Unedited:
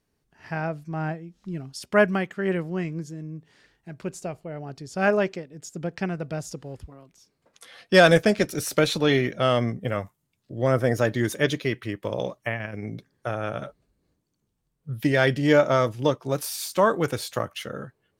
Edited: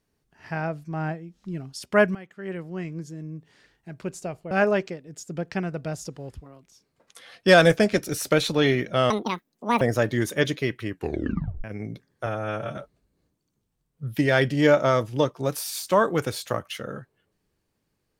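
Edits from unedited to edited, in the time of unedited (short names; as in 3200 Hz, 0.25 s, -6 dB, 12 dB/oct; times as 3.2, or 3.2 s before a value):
2.15–3.27 fade in, from -18.5 dB
4.51–4.97 cut
9.56–10.84 speed 180%
11.92 tape stop 0.75 s
13.29–13.63 stretch 1.5×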